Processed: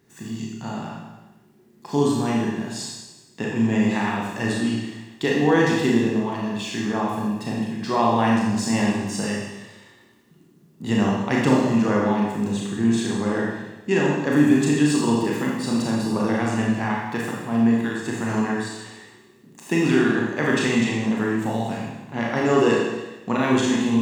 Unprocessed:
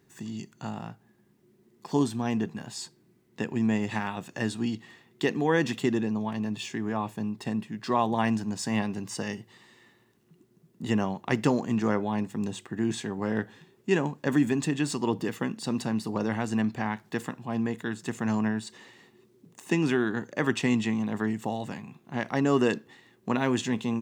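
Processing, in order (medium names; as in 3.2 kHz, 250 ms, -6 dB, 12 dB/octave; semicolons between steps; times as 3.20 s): Schroeder reverb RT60 1.1 s, combs from 27 ms, DRR -3.5 dB; trim +2 dB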